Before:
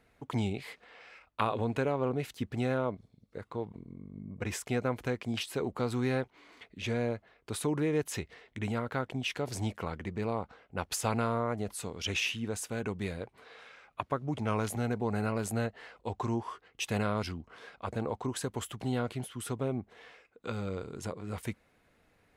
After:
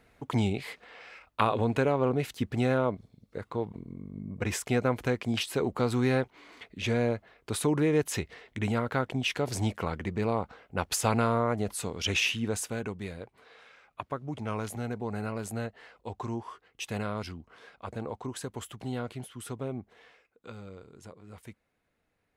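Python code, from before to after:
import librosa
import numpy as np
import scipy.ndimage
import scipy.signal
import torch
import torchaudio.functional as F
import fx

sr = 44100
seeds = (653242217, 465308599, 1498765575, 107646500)

y = fx.gain(x, sr, db=fx.line((12.59, 4.5), (12.99, -2.5), (19.91, -2.5), (20.76, -10.0)))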